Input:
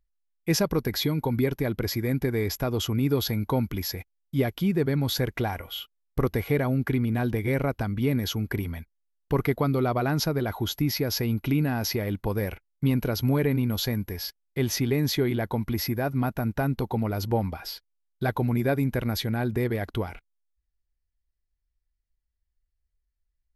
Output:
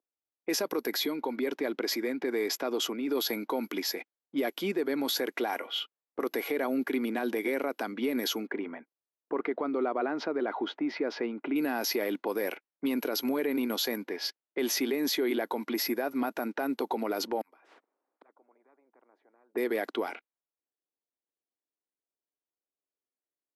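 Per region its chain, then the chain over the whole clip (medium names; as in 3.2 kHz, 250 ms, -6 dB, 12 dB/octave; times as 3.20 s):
0.96–3.08 s: compression, threshold -26 dBFS + tape noise reduction on one side only encoder only
8.47–11.56 s: low-pass 2 kHz + compression 2.5:1, threshold -26 dBFS
17.41–19.55 s: peaking EQ 4 kHz -12 dB 1.4 oct + inverted gate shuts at -31 dBFS, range -42 dB + spectrum-flattening compressor 10:1
whole clip: steep high-pass 270 Hz 36 dB/octave; level-controlled noise filter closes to 780 Hz, open at -27.5 dBFS; peak limiter -24.5 dBFS; trim +3.5 dB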